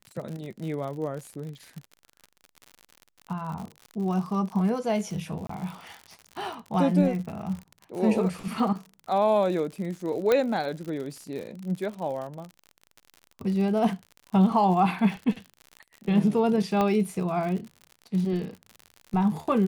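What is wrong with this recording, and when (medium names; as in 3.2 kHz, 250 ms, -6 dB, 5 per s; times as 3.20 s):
crackle 68 per s -34 dBFS
5.47–5.49 s: dropout 24 ms
10.32 s: pop -10 dBFS
16.81 s: pop -13 dBFS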